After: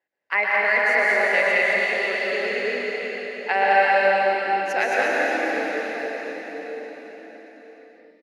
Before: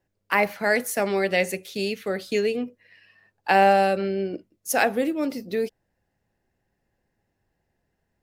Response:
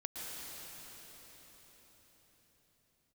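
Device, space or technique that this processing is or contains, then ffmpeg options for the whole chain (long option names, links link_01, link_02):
station announcement: -filter_complex "[0:a]highpass=490,lowpass=4200,equalizer=frequency=2000:width_type=o:width=0.38:gain=9,aecho=1:1:122.4|177.8|215.7:0.355|0.355|0.708[link_01];[1:a]atrim=start_sample=2205[link_02];[link_01][link_02]afir=irnorm=-1:irlink=0"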